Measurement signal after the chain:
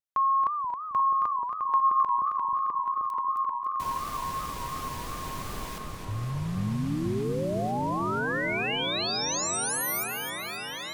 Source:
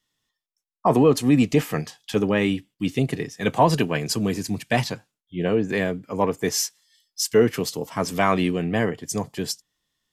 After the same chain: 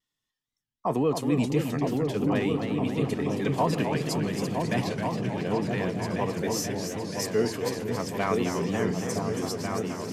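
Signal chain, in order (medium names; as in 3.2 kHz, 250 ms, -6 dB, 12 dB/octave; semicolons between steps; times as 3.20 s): vibrato 0.36 Hz 9 cents; delay with an opening low-pass 482 ms, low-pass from 200 Hz, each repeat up 2 oct, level 0 dB; modulated delay 268 ms, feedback 52%, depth 187 cents, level -7 dB; trim -8.5 dB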